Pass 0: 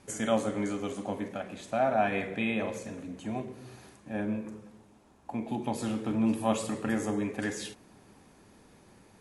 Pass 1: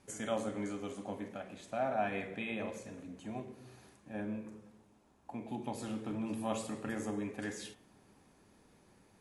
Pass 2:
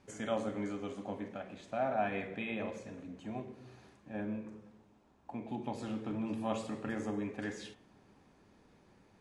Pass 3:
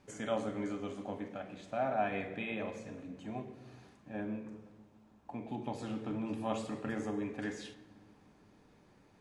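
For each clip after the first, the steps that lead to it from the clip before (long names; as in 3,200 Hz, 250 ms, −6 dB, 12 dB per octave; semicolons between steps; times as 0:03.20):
hum removal 112.3 Hz, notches 33; level −7 dB
high-frequency loss of the air 82 metres; level +1 dB
rectangular room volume 2,200 cubic metres, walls mixed, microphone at 0.41 metres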